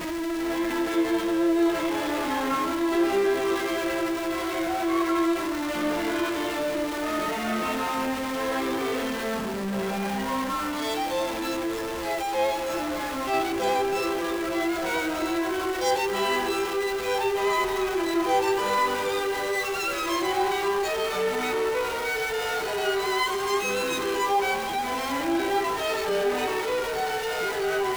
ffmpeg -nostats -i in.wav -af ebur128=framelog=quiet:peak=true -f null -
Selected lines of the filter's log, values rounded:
Integrated loudness:
  I:         -26.1 LUFS
  Threshold: -36.1 LUFS
Loudness range:
  LRA:         3.0 LU
  Threshold: -46.1 LUFS
  LRA low:   -27.8 LUFS
  LRA high:  -24.8 LUFS
True peak:
  Peak:      -14.9 dBFS